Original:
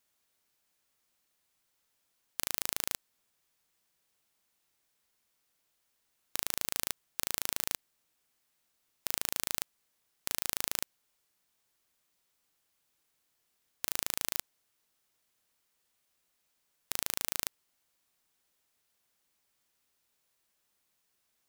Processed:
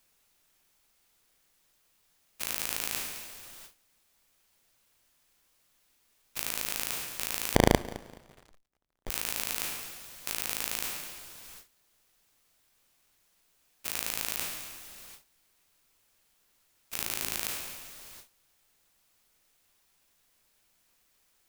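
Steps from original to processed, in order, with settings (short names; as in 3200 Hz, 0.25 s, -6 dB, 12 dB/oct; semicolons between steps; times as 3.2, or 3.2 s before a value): spectral trails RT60 1.10 s; echo with dull and thin repeats by turns 0.106 s, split 2200 Hz, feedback 57%, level -8 dB; added noise brown -62 dBFS; in parallel at -7 dB: requantised 6-bit, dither triangular; 16.97–17.4 on the sum: frequency shift -420 Hz; dynamic EQ 2500 Hz, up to +5 dB, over -54 dBFS, Q 4; gate with hold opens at -33 dBFS; 7.55–9.1 running maximum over 33 samples; gain -6 dB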